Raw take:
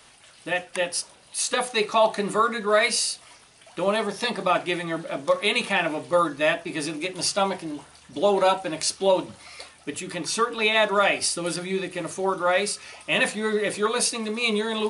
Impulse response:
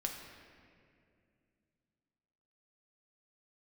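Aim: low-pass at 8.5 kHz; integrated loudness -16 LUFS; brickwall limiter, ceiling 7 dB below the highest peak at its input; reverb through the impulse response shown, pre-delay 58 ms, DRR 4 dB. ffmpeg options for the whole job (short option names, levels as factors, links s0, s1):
-filter_complex "[0:a]lowpass=8500,alimiter=limit=0.188:level=0:latency=1,asplit=2[s0][s1];[1:a]atrim=start_sample=2205,adelay=58[s2];[s1][s2]afir=irnorm=-1:irlink=0,volume=0.562[s3];[s0][s3]amix=inputs=2:normalize=0,volume=2.82"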